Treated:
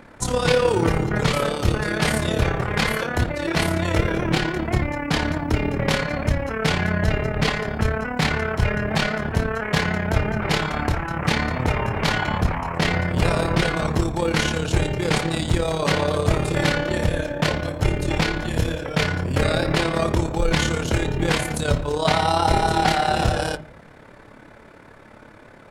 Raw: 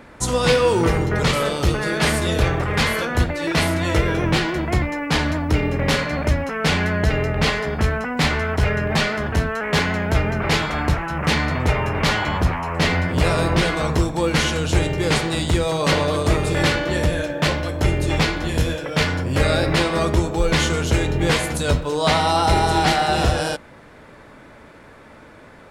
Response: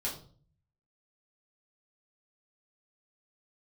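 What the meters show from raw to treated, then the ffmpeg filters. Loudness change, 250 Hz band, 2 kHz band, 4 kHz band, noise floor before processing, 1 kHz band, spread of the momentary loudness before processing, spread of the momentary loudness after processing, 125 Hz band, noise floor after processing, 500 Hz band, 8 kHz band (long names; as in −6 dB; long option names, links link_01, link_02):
−2.0 dB, −1.5 dB, −2.0 dB, −3.0 dB, −45 dBFS, −1.5 dB, 4 LU, 4 LU, −2.0 dB, −46 dBFS, −2.0 dB, −3.0 dB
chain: -filter_complex "[0:a]tremolo=f=35:d=0.667,asplit=2[link_01][link_02];[link_02]lowpass=2500[link_03];[1:a]atrim=start_sample=2205[link_04];[link_03][link_04]afir=irnorm=-1:irlink=0,volume=-12.5dB[link_05];[link_01][link_05]amix=inputs=2:normalize=0"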